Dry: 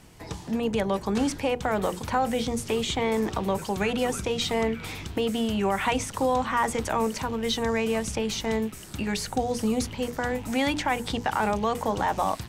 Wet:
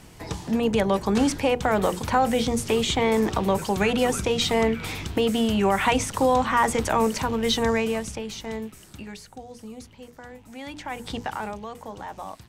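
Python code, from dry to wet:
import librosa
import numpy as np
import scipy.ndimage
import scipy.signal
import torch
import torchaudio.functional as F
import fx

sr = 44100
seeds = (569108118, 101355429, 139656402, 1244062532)

y = fx.gain(x, sr, db=fx.line((7.69, 4.0), (8.25, -5.5), (8.87, -5.5), (9.29, -14.5), (10.55, -14.5), (11.18, -2.0), (11.67, -11.0)))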